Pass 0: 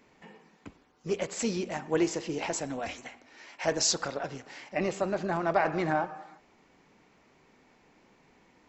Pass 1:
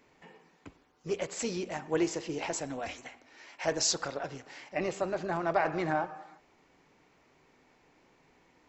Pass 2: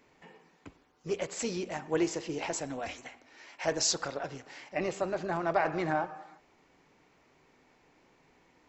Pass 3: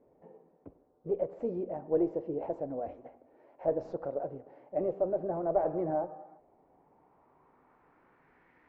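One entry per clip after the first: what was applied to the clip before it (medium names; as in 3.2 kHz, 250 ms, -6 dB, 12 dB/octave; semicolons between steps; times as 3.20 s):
peaking EQ 210 Hz -9 dB 0.22 oct; trim -2 dB
no audible change
single-diode clipper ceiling -18.5 dBFS; low-pass sweep 570 Hz -> 1.8 kHz, 6.13–8.58 s; trim -2.5 dB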